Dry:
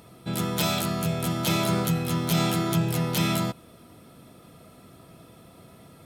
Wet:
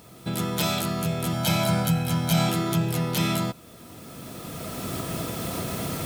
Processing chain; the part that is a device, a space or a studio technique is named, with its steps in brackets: cheap recorder with automatic gain (white noise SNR 30 dB; recorder AGC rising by 13 dB/s); 1.33–2.49 comb 1.3 ms, depth 64%

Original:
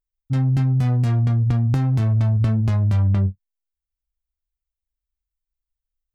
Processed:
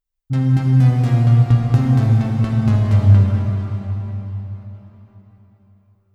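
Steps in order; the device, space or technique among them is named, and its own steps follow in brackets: cathedral (reverb RT60 4.3 s, pre-delay 35 ms, DRR -2 dB); gain +1 dB

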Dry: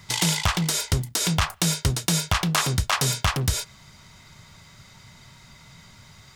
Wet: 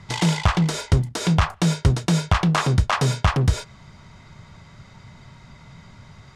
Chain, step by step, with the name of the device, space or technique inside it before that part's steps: through cloth (LPF 8500 Hz 12 dB/oct; high shelf 2200 Hz -13 dB); gain +6 dB

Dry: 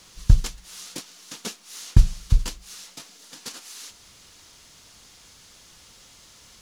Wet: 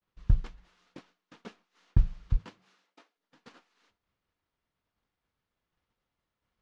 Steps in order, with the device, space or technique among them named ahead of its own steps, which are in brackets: hearing-loss simulation (LPF 1900 Hz 12 dB/oct; expander -45 dBFS); 2.36–3.16 HPF 90 Hz -> 360 Hz 24 dB/oct; gain -8.5 dB

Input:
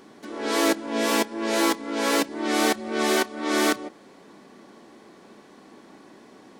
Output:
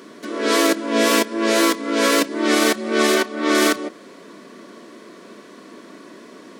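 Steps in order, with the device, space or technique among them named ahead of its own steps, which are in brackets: PA system with an anti-feedback notch (HPF 190 Hz 12 dB/oct; Butterworth band-stop 810 Hz, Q 3.9; limiter -13.5 dBFS, peak gain reduction 6 dB); 3.14–3.55 high shelf 6100 Hz -6.5 dB; gain +8.5 dB

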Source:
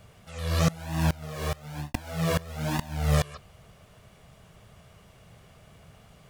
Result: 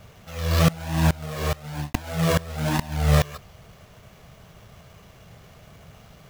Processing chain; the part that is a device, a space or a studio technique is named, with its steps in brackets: early companding sampler (sample-rate reducer 9000 Hz, jitter 0%; companded quantiser 6-bit); gain +5 dB

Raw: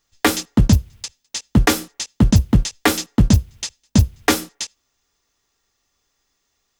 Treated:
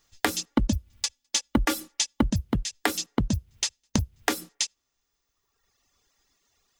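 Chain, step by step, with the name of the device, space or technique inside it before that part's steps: serial compression, peaks first (compressor 6:1, threshold -20 dBFS, peak gain reduction 12.5 dB; compressor 2:1, threshold -27 dBFS, peak gain reduction 6 dB); reverb removal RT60 1.4 s; 0.5–2.26 comb 3.5 ms, depth 67%; gain +3 dB

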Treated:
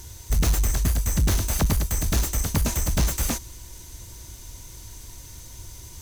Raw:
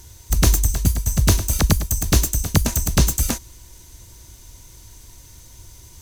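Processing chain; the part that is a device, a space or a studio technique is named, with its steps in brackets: saturation between pre-emphasis and de-emphasis (high shelf 2500 Hz +11.5 dB; soft clip -17.5 dBFS, distortion -5 dB; high shelf 2500 Hz -11.5 dB); gain +2.5 dB

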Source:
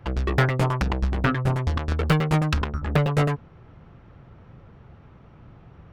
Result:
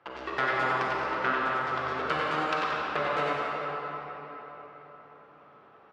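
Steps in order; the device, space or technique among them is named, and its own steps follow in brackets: station announcement (BPF 460–4800 Hz; bell 1300 Hz +5.5 dB 0.49 oct; loudspeakers at several distances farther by 32 m -6 dB, 61 m -12 dB; reverb RT60 4.4 s, pre-delay 36 ms, DRR -4 dB); gain -7.5 dB

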